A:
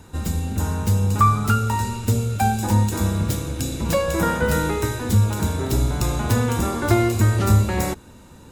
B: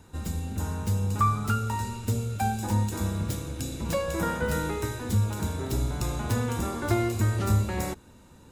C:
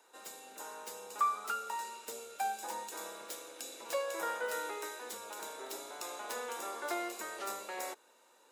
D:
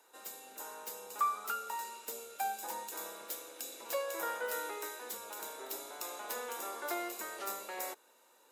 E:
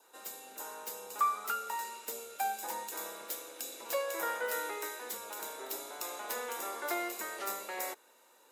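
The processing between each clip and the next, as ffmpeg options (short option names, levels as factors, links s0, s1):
-af "equalizer=f=16000:w=5.2:g=-13,volume=0.422"
-af "highpass=f=460:w=0.5412,highpass=f=460:w=1.3066,volume=0.531"
-af "equalizer=f=14000:t=o:w=0.4:g=12.5,volume=0.891"
-af "adynamicequalizer=threshold=0.00141:dfrequency=2000:dqfactor=4.4:tfrequency=2000:tqfactor=4.4:attack=5:release=100:ratio=0.375:range=2:mode=boostabove:tftype=bell,volume=1.26"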